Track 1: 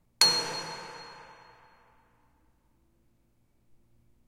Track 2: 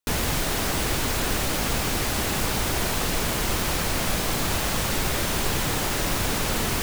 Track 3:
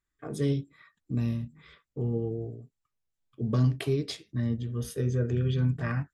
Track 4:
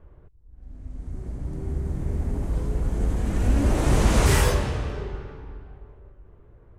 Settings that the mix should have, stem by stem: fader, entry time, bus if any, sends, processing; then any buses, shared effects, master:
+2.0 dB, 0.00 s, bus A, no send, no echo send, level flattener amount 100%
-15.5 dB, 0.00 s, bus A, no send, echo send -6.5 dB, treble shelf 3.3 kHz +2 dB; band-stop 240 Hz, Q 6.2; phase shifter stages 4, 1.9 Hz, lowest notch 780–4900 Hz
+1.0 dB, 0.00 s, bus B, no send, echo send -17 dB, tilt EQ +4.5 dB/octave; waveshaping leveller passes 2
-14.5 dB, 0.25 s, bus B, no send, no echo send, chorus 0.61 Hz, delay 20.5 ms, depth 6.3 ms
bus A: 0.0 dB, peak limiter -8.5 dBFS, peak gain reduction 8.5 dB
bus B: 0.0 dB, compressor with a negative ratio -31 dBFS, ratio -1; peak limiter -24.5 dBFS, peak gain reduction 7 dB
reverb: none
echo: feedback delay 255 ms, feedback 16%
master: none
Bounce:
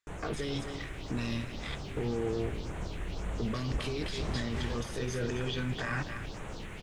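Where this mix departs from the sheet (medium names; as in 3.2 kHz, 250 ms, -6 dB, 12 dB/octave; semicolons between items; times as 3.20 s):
stem 1: muted; master: extra distance through air 110 m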